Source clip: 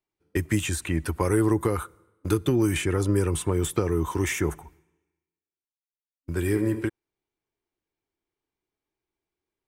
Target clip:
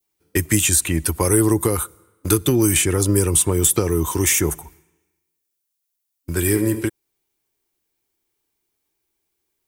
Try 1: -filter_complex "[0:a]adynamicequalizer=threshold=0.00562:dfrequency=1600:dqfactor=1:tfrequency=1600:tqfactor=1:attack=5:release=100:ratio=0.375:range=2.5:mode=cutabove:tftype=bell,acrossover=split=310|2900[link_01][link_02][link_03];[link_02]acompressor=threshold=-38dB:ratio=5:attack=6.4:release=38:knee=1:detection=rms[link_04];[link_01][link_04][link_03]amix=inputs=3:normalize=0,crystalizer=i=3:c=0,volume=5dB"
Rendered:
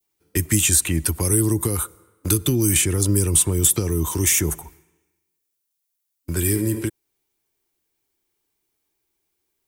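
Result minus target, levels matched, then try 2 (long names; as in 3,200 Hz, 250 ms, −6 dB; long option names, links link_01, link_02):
downward compressor: peak gain reduction +14.5 dB
-af "adynamicequalizer=threshold=0.00562:dfrequency=1600:dqfactor=1:tfrequency=1600:tqfactor=1:attack=5:release=100:ratio=0.375:range=2.5:mode=cutabove:tftype=bell,crystalizer=i=3:c=0,volume=5dB"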